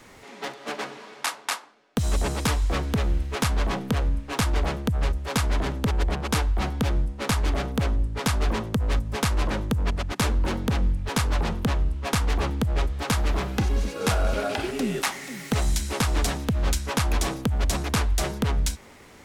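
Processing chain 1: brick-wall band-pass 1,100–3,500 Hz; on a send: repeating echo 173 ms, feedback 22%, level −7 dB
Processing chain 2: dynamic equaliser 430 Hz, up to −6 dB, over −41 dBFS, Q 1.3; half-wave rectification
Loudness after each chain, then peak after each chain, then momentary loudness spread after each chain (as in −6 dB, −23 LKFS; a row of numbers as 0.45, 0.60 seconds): −34.5, −31.5 LKFS; −14.5, −14.5 dBFS; 6, 5 LU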